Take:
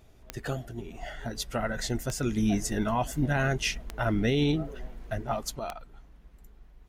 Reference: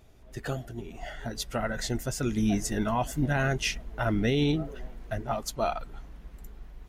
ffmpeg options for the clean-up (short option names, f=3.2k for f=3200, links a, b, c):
-af "adeclick=t=4,asetnsamples=n=441:p=0,asendcmd='5.59 volume volume 8dB',volume=0dB"